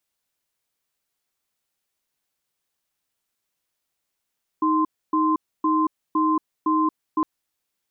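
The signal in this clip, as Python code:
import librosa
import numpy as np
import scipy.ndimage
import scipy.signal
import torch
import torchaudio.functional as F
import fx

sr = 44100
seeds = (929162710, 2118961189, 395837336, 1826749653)

y = fx.cadence(sr, length_s=2.61, low_hz=313.0, high_hz=1040.0, on_s=0.23, off_s=0.28, level_db=-20.0)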